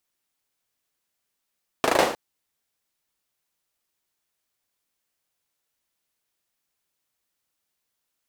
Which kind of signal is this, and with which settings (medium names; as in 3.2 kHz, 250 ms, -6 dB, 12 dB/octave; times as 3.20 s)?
hand clap length 0.31 s, bursts 5, apart 37 ms, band 520 Hz, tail 0.49 s